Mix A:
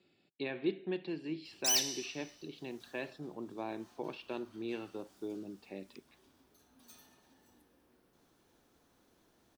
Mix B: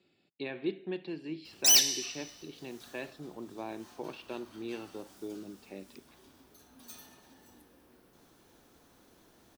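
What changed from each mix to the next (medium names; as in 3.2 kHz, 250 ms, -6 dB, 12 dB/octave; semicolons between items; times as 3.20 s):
background +7.5 dB; master: add treble shelf 10 kHz +3 dB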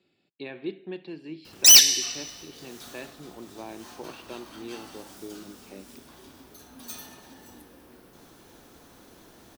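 background +9.5 dB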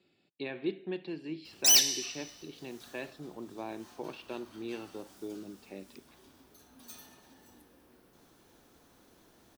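background -9.5 dB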